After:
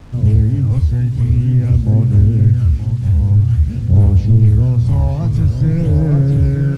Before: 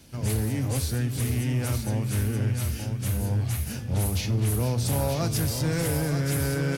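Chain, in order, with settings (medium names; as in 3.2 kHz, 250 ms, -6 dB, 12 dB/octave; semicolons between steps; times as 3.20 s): phaser 0.49 Hz, delay 1.2 ms, feedback 46%; tilt EQ -4 dB/octave; bit crusher 7-bit; distance through air 53 m; trim -2 dB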